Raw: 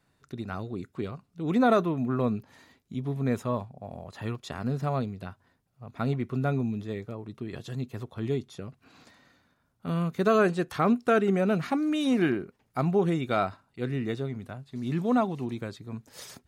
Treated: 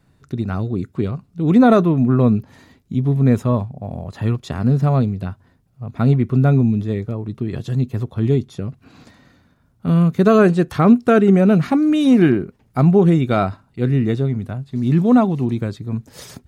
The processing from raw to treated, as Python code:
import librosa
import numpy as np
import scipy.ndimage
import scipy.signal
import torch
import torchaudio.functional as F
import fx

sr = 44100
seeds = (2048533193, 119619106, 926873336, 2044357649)

y = fx.low_shelf(x, sr, hz=320.0, db=11.5)
y = y * 10.0 ** (5.5 / 20.0)